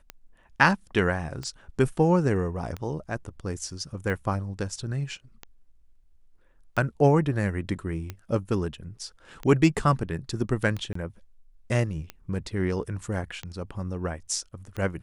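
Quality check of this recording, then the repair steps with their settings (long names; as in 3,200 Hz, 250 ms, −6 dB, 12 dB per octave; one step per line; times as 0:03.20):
scratch tick 45 rpm −20 dBFS
0:10.93–0:10.95: drop-out 24 ms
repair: click removal
repair the gap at 0:10.93, 24 ms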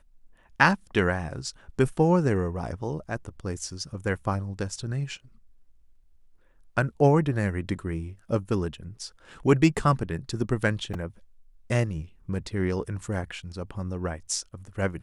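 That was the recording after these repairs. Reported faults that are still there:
none of them is left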